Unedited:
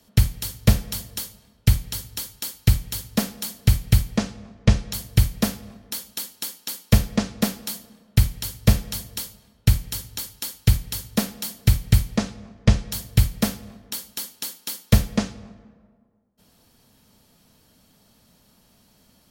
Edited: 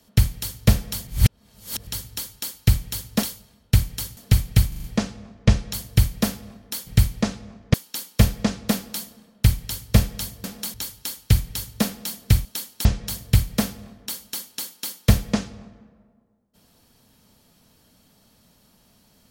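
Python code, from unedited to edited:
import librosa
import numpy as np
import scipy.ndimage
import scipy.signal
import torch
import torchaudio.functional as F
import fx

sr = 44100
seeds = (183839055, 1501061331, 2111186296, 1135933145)

y = fx.edit(x, sr, fx.reverse_span(start_s=1.07, length_s=0.8),
    fx.swap(start_s=3.23, length_s=0.3, other_s=9.17, other_length_s=0.94),
    fx.stutter(start_s=4.04, slice_s=0.04, count=5),
    fx.swap(start_s=6.07, length_s=0.4, other_s=11.82, other_length_s=0.87), tone=tone)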